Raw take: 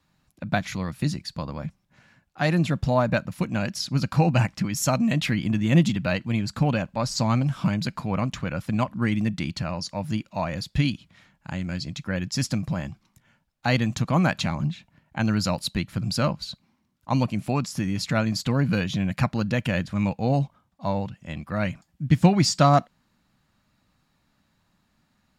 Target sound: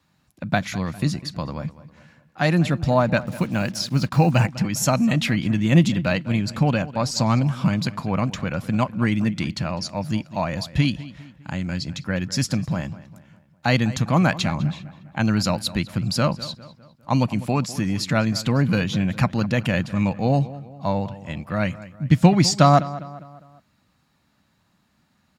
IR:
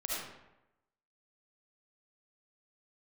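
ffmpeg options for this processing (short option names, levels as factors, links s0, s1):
-filter_complex "[0:a]highpass=57,asettb=1/sr,asplit=3[s0][s1][s2];[s0]atrim=end=3.214[s3];[s1]atrim=start=3.21:end=4.46,asetpts=PTS-STARTPTS,afade=t=in:d=0.004:c=qsin,afade=t=out:st=1.246:d=0.004:c=qsin,acrusher=bits=7:mix=0:aa=0.5[s4];[s2]atrim=start=4.456[s5];[s3][s4]acrossfade=d=0.004:c1=hsin:c2=qsin[s6];[s6][s5]acrossfade=d=0.004:c1=qsin:c2=hsin,asplit=2[s7][s8];[s8]adelay=202,lowpass=f=3200:p=1,volume=0.15,asplit=2[s9][s10];[s10]adelay=202,lowpass=f=3200:p=1,volume=0.47,asplit=2[s11][s12];[s12]adelay=202,lowpass=f=3200:p=1,volume=0.47,asplit=2[s13][s14];[s14]adelay=202,lowpass=f=3200:p=1,volume=0.47[s15];[s9][s11][s13][s15]amix=inputs=4:normalize=0[s16];[s7][s16]amix=inputs=2:normalize=0,volume=1.41"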